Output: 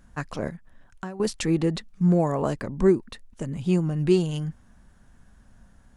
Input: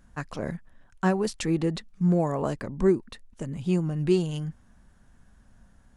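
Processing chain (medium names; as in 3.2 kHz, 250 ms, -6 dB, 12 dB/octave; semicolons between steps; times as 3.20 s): 0.48–1.20 s: compression 4:1, threshold -38 dBFS, peak gain reduction 16.5 dB; trim +2.5 dB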